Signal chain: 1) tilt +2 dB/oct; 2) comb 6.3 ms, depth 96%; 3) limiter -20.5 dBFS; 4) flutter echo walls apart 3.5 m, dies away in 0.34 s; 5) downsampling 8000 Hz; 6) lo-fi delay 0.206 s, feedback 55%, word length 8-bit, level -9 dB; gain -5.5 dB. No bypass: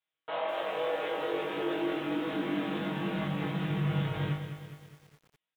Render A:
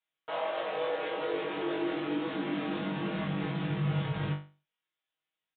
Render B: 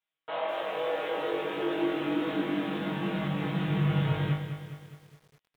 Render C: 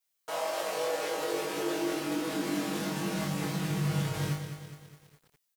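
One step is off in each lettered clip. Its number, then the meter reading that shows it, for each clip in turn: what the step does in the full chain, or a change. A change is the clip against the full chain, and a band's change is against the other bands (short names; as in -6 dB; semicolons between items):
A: 6, momentary loudness spread change -4 LU; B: 3, mean gain reduction 1.5 dB; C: 5, 4 kHz band +3.0 dB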